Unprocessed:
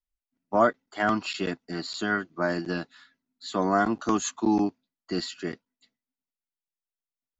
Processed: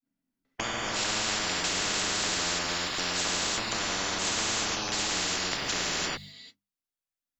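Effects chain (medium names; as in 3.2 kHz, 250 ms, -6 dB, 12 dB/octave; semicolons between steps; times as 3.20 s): slices played last to first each 149 ms, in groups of 3; compression 4:1, threshold -32 dBFS, peak gain reduction 13.5 dB; expander -52 dBFS; hum notches 50/100/150/200 Hz; gated-style reverb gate 370 ms flat, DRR -7 dB; spectrum-flattening compressor 10:1; trim +2.5 dB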